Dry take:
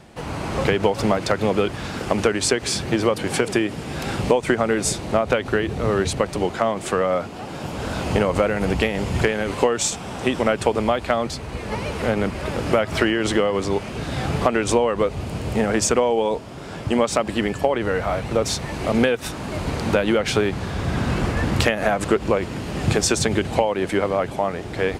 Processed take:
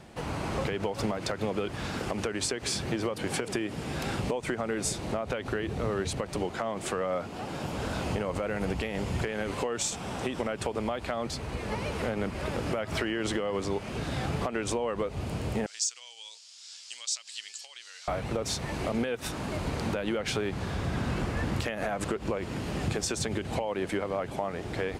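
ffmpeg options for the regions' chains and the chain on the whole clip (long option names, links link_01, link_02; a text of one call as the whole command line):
ffmpeg -i in.wav -filter_complex "[0:a]asettb=1/sr,asplit=3[link_01][link_02][link_03];[link_01]atrim=end=15.664[link_04];[link_02]atrim=start=15.66:end=18.08,asetpts=PTS-STARTPTS,afade=type=in:duration=0.004:curve=qsin,afade=type=out:start_time=2.416:duration=0.004:curve=qsin,asuperpass=centerf=5800:order=4:qfactor=1.5,acontrast=81[link_05];[link_03]atrim=start=18.076[link_06];[link_04][link_05]acrossfade=duration=0.004:curve1=hsin:curve2=qsin[link_07];[link_07][link_06]acrossfade=duration=0.004:curve1=qsin:curve2=hsin,alimiter=limit=-10.5dB:level=0:latency=1:release=149,acompressor=threshold=-27dB:ratio=2,volume=-3.5dB" out.wav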